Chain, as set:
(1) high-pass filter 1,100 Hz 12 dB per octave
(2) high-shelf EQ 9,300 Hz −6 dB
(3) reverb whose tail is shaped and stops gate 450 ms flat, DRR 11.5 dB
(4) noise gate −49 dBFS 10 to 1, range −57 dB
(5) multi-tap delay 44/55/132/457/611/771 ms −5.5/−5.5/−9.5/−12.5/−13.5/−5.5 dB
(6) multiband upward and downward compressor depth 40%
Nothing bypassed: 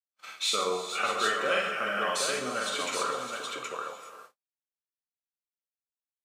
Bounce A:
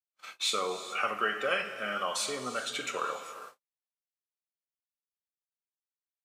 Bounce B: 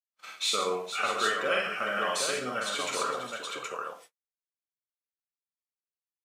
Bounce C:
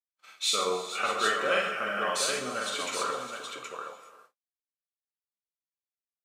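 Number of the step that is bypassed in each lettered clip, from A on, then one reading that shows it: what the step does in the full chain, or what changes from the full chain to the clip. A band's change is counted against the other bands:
5, change in momentary loudness spread +2 LU
3, change in momentary loudness spread −2 LU
6, change in momentary loudness spread +2 LU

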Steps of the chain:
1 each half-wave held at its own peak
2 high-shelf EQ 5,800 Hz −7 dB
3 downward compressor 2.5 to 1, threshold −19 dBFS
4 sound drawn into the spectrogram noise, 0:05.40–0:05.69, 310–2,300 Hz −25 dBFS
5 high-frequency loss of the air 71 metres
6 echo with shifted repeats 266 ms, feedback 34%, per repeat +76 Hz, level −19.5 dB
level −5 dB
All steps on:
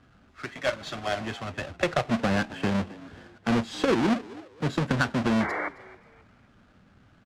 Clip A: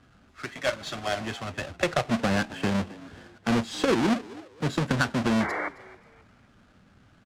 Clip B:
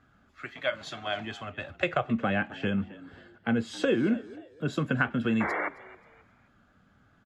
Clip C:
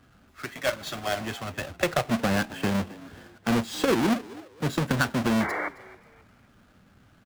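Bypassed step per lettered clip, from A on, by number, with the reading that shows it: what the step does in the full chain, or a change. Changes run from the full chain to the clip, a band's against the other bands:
2, 8 kHz band +4.0 dB
1, distortion level −5 dB
5, 8 kHz band +6.0 dB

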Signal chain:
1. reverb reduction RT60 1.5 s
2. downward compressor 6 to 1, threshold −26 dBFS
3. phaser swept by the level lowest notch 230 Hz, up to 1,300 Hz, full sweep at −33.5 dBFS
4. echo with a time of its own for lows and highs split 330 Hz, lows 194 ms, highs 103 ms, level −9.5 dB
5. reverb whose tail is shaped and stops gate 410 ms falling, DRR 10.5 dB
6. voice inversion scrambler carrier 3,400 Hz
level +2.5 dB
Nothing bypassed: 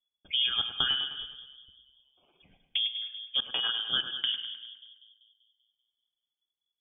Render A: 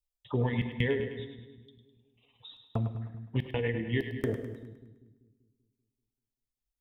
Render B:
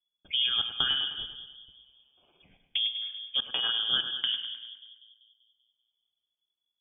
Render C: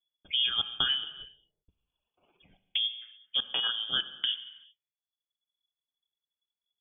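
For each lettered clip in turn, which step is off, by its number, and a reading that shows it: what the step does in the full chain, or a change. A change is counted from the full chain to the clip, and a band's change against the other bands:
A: 6, 1 kHz band −22.0 dB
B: 1, change in momentary loudness spread +2 LU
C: 4, change in momentary loudness spread +2 LU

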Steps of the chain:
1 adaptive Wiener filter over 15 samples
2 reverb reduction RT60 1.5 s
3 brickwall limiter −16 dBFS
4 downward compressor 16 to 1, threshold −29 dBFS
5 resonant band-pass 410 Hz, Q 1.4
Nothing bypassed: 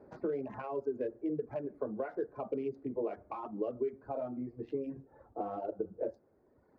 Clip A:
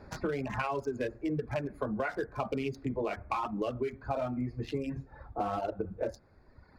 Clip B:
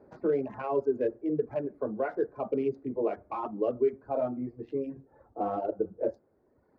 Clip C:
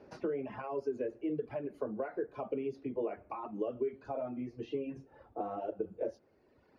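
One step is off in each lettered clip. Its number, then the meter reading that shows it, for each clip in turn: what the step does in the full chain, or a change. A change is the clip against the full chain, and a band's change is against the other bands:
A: 5, 2 kHz band +9.0 dB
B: 4, average gain reduction 4.5 dB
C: 1, 2 kHz band +2.5 dB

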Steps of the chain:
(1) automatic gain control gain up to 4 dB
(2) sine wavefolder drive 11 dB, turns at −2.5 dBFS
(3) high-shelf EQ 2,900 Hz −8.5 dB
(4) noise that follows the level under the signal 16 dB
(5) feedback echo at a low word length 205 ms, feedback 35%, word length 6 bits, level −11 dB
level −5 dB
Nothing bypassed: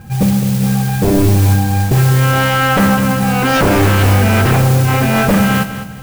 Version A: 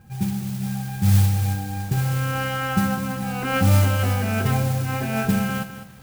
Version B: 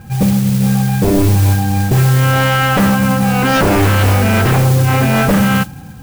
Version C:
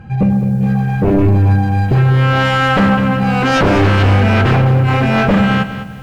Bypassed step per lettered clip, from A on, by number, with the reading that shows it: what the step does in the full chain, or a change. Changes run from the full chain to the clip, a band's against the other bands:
2, distortion level −1 dB
5, change in momentary loudness spread −1 LU
4, 4 kHz band −1.5 dB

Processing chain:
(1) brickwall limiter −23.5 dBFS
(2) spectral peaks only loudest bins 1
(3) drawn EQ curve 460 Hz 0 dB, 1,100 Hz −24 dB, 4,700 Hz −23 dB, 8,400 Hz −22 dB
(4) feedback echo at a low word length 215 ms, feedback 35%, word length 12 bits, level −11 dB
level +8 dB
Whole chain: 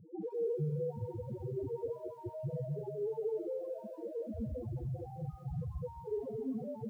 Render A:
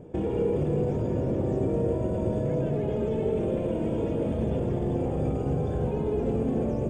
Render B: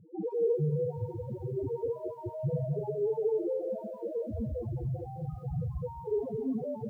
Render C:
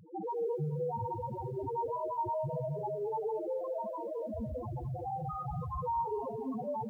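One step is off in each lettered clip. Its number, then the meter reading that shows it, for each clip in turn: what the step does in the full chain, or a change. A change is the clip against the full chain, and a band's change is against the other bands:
2, 250 Hz band +3.5 dB
1, average gain reduction 5.0 dB
3, 1 kHz band +18.0 dB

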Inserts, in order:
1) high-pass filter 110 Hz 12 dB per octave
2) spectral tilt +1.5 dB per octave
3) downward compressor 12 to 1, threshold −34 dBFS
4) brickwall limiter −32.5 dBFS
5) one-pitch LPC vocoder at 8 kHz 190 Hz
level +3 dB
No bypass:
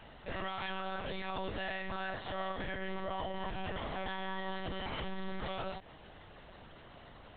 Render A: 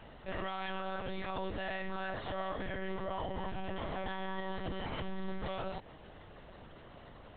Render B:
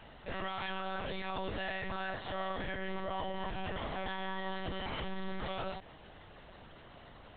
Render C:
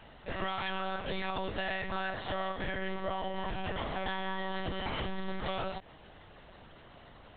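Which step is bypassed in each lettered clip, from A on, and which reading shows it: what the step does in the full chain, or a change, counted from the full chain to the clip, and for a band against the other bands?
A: 2, 4 kHz band −4.0 dB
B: 3, average gain reduction 4.5 dB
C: 4, average gain reduction 2.5 dB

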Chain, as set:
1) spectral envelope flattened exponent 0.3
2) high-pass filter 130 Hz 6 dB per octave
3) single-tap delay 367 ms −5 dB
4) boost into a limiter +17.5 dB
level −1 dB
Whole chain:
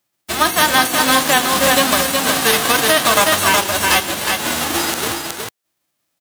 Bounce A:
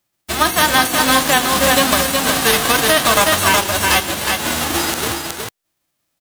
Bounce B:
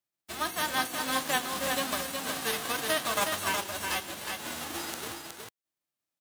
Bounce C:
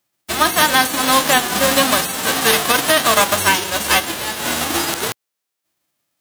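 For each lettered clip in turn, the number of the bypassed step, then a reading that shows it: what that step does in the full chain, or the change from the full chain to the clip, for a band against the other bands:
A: 2, 125 Hz band +3.5 dB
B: 4, change in crest factor +4.5 dB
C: 3, change in integrated loudness −1.0 LU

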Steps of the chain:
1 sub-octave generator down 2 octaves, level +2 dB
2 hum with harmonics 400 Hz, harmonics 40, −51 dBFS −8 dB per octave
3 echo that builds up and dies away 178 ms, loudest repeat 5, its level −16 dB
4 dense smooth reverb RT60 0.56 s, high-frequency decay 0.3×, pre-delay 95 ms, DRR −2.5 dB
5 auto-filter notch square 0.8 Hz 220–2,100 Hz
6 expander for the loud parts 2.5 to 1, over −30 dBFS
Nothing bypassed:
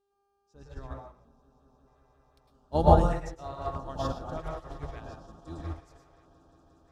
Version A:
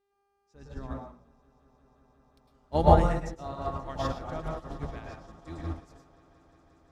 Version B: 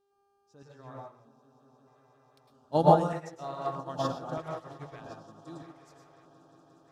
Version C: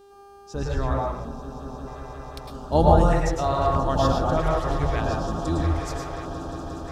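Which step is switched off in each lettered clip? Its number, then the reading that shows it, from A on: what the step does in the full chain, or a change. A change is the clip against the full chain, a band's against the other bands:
5, 2 kHz band +3.0 dB
1, 125 Hz band −4.5 dB
6, 2 kHz band +6.0 dB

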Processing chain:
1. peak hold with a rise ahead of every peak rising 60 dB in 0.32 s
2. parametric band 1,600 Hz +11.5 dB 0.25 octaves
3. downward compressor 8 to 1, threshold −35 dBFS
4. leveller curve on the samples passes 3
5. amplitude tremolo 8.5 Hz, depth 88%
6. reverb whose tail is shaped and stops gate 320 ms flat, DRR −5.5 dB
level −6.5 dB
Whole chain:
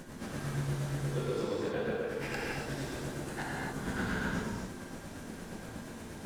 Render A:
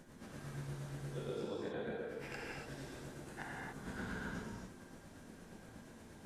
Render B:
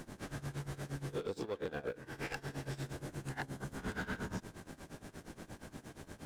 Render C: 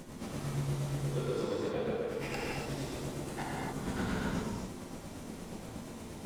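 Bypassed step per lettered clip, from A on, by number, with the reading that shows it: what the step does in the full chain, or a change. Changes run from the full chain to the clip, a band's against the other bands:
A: 4, change in crest factor +2.0 dB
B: 6, change in integrated loudness −6.5 LU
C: 2, 2 kHz band −5.0 dB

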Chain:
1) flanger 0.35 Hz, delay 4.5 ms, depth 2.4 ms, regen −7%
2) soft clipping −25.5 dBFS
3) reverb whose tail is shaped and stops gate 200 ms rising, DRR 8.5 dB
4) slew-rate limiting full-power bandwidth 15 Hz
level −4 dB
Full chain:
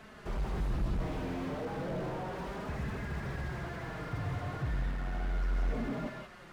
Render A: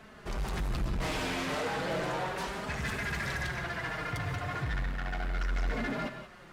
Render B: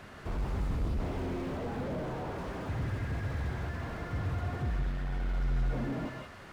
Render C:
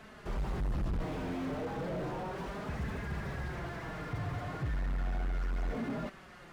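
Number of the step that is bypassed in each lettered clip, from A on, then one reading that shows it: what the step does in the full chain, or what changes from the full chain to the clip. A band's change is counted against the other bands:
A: 4, distortion level −3 dB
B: 1, change in integrated loudness +1.5 LU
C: 3, change in crest factor −5.5 dB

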